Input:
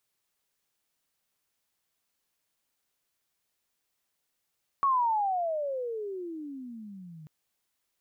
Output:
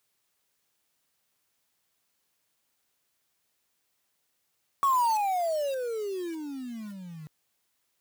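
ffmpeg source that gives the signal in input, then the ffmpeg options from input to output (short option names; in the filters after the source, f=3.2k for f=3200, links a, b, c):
-f lavfi -i "aevalsrc='pow(10,(-21-23*t/2.44)/20)*sin(2*PI*1130*2.44/(-35*log(2)/12)*(exp(-35*log(2)/12*t/2.44)-1))':d=2.44:s=44100"
-filter_complex "[0:a]highpass=56,asplit=2[a][b];[b]asoftclip=type=tanh:threshold=-38dB,volume=-4.5dB[c];[a][c]amix=inputs=2:normalize=0,acrusher=bits=3:mode=log:mix=0:aa=0.000001"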